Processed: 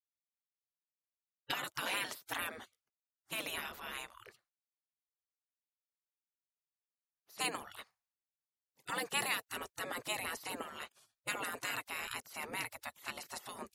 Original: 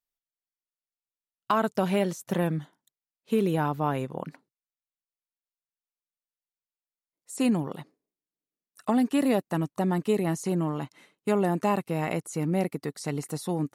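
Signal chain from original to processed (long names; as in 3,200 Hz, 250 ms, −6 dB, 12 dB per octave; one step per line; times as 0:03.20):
low-shelf EQ 83 Hz −6 dB
gate on every frequency bin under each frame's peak −20 dB weak
one half of a high-frequency compander decoder only
level +3.5 dB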